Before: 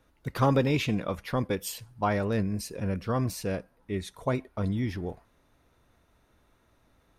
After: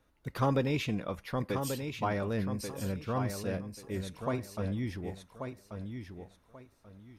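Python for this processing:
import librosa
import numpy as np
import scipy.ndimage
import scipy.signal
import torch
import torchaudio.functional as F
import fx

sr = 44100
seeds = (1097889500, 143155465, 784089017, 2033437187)

y = fx.echo_feedback(x, sr, ms=1136, feedback_pct=24, wet_db=-7.0)
y = F.gain(torch.from_numpy(y), -5.0).numpy()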